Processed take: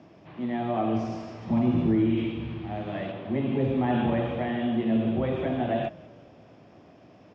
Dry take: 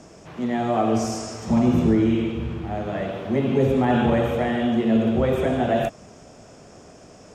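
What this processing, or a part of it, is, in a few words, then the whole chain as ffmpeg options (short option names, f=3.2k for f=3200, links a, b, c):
frequency-shifting delay pedal into a guitar cabinet: -filter_complex "[0:a]asplit=5[a][b][c][d][e];[b]adelay=191,afreqshift=-52,volume=-22dB[f];[c]adelay=382,afreqshift=-104,volume=-26.7dB[g];[d]adelay=573,afreqshift=-156,volume=-31.5dB[h];[e]adelay=764,afreqshift=-208,volume=-36.2dB[i];[a][f][g][h][i]amix=inputs=5:normalize=0,highpass=94,equalizer=f=110:t=q:w=4:g=4,equalizer=f=310:t=q:w=4:g=4,equalizer=f=450:t=q:w=4:g=-6,equalizer=f=1.4k:t=q:w=4:g=-5,lowpass=f=3.8k:w=0.5412,lowpass=f=3.8k:w=1.3066,asettb=1/sr,asplit=3[j][k][l];[j]atrim=end=2.174[m];[k]atrim=start=2.17:end=3.12,asetpts=PTS-STARTPTS,afade=t=in:d=0.004:c=qsin,afade=t=out:st=0.946:d=0.004:c=qsin,highshelf=f=3k:g=8.5[n];[l]atrim=start=3.116[o];[m][n]acrossfade=d=0.004:c1=hsin:c2=qsin[p];[p][o]acrossfade=d=0.004:c1=qsin:c2=hsin,volume=-5.5dB"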